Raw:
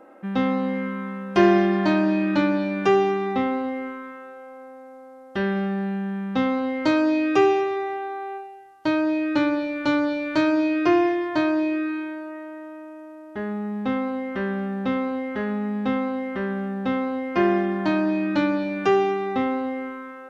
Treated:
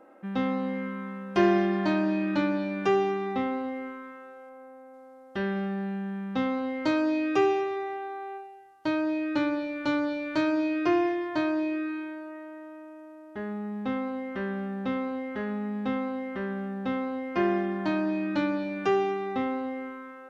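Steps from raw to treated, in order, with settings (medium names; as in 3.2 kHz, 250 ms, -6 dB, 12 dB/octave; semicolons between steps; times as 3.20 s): 4.49–4.94 s: peaking EQ 4.8 kHz -5 dB 1.5 oct; trim -5.5 dB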